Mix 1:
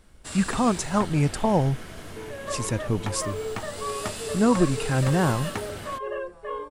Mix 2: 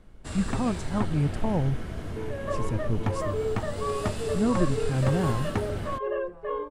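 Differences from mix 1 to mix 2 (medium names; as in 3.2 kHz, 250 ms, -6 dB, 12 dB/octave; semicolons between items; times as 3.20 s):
speech -9.5 dB; master: add tilt EQ -2.5 dB/octave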